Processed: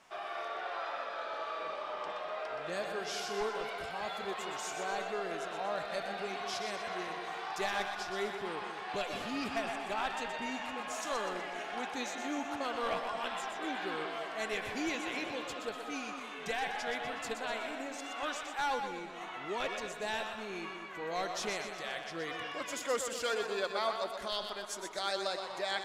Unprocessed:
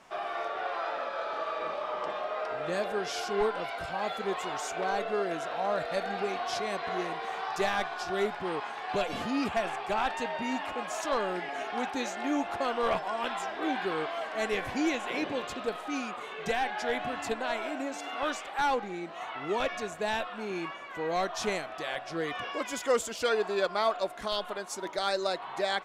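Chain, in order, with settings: tilt shelf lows -3 dB, about 1.2 kHz; two-band feedback delay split 430 Hz, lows 199 ms, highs 123 ms, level -7 dB; trim -5.5 dB

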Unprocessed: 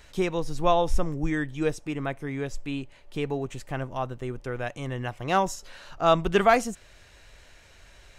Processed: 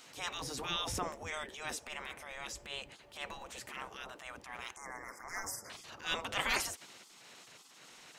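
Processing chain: spectral gate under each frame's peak -20 dB weak; transient shaper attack -10 dB, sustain +2 dB; 4.76–5.70 s: Chebyshev band-stop 2.1–5 kHz, order 4; trim +4 dB

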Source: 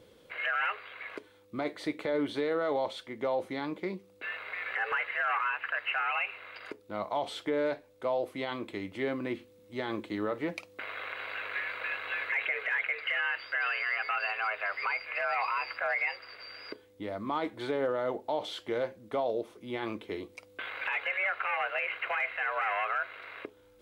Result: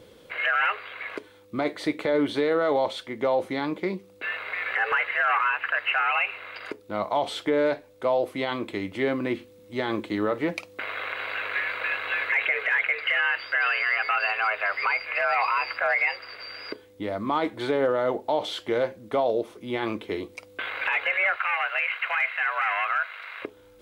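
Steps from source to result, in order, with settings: 21.36–23.42 s: high-pass 950 Hz 12 dB/octave; trim +7 dB

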